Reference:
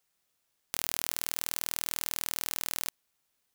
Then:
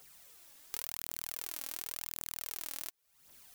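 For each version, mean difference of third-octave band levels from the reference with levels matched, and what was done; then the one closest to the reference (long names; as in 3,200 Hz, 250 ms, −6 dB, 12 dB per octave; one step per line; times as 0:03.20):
3.0 dB: high-shelf EQ 9,000 Hz +4.5 dB
downward compressor 12 to 1, threshold −50 dBFS, peak gain reduction 27.5 dB
phase shifter 0.91 Hz, delay 3.8 ms, feedback 52%
level +15.5 dB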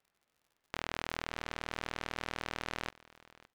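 10.5 dB: low-pass filter 2,200 Hz 12 dB per octave
surface crackle 60 per second −60 dBFS
on a send: single-tap delay 565 ms −21 dB
on the sum: level +3.5 dB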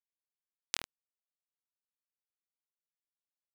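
35.5 dB: treble cut that deepens with the level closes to 430 Hz, closed at −43 dBFS
tilt shelving filter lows −8 dB, about 1,400 Hz
bit reduction 5 bits
level +1 dB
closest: first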